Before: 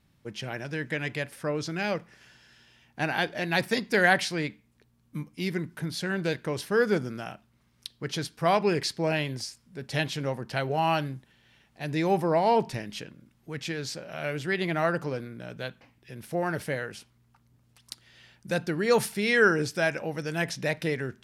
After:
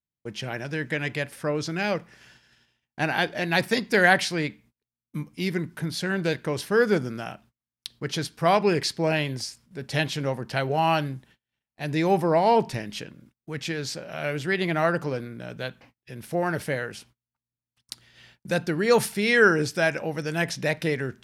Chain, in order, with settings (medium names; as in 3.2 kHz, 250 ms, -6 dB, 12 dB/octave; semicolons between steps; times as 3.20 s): gate -56 dBFS, range -34 dB; trim +3 dB